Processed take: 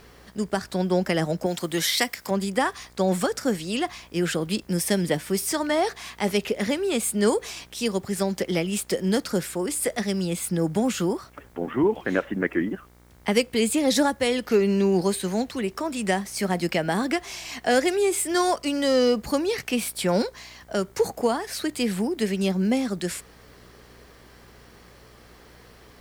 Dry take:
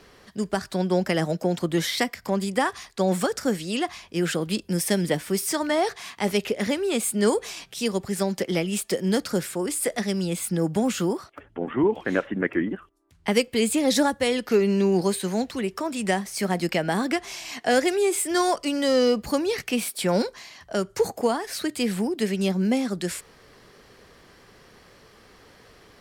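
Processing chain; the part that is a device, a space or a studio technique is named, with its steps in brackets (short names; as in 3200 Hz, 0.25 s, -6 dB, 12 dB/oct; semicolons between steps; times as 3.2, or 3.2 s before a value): video cassette with head-switching buzz (buzz 60 Hz, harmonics 39, -54 dBFS -5 dB/oct; white noise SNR 39 dB); 1.46–2.31 tilt +2 dB/oct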